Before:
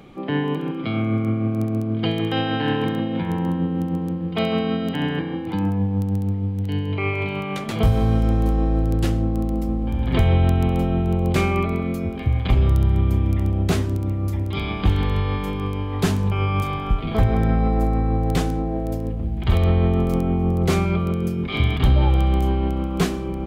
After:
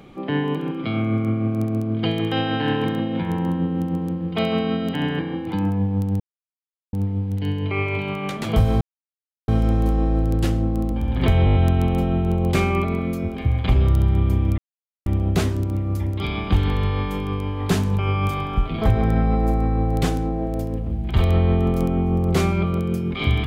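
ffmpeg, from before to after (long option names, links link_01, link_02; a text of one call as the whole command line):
ffmpeg -i in.wav -filter_complex "[0:a]asplit=10[link_01][link_02][link_03][link_04][link_05][link_06][link_07][link_08][link_09][link_10];[link_01]atrim=end=6.2,asetpts=PTS-STARTPTS,afade=type=out:start_time=6.196:duration=0.004:curve=hsin,apad=pad_dur=0.73[link_11];[link_02]atrim=start=6.2:end=8.08,asetpts=PTS-STARTPTS,afade=type=in:duration=0.004:curve=hsin,afade=type=out:start_time=1.876:duration=0.004:curve=hsin,apad=pad_dur=0.67[link_12];[link_03]atrim=start=8.08:end=9.522,asetpts=PTS-STARTPTS,afade=type=in:duration=0.004:curve=hsin[link_13];[link_04]atrim=start=9.828:end=10.382[link_14];[link_05]atrim=start=10.358:end=10.382[link_15];[link_06]atrim=start=10.358:end=10.382[link_16];[link_07]atrim=start=10.358:end=10.382[link_17];[link_08]atrim=start=10.358:end=10.382[link_18];[link_09]atrim=start=10.358:end=13.39,asetpts=PTS-STARTPTS,afade=type=out:start_time=3.028:duration=0.004:curve=hsin,apad=pad_dur=0.48[link_19];[link_10]atrim=start=13.39,asetpts=PTS-STARTPTS,afade=type=in:duration=0.004:curve=hsin[link_20];[link_11][link_12][link_13]concat=n=3:v=0:a=1[link_21];[link_21][link_14]acrossfade=duration=0.004:curve1=hsin:curve2=hsin[link_22];[link_22][link_15]acrossfade=duration=0.004:curve1=hsin:curve2=hsin[link_23];[link_23][link_16]acrossfade=duration=0.004:curve1=hsin:curve2=hsin[link_24];[link_24][link_17]acrossfade=duration=0.004:curve1=hsin:curve2=hsin[link_25];[link_25][link_18]acrossfade=duration=0.004:curve1=hsin:curve2=hsin[link_26];[link_19][link_20]concat=n=2:v=0:a=1[link_27];[link_26][link_27]acrossfade=duration=0.004:curve1=hsin:curve2=hsin" out.wav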